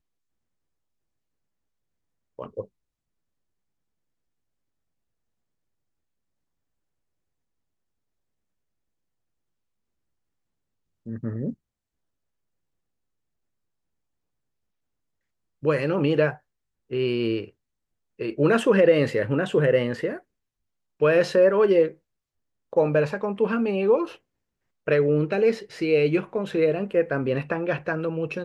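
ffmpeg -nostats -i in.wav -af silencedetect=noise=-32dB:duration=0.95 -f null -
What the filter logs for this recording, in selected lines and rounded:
silence_start: 0.00
silence_end: 2.39 | silence_duration: 2.39
silence_start: 2.61
silence_end: 11.07 | silence_duration: 8.46
silence_start: 11.51
silence_end: 15.64 | silence_duration: 4.12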